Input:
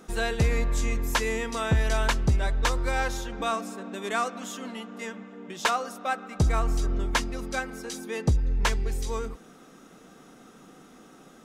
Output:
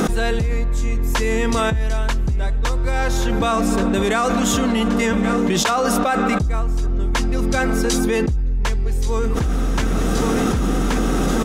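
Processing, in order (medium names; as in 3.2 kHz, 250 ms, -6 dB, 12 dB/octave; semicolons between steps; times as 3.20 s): bass shelf 360 Hz +7 dB; on a send: feedback delay 1127 ms, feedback 47%, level -22 dB; on the sum: level flattener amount 100%; trim -6.5 dB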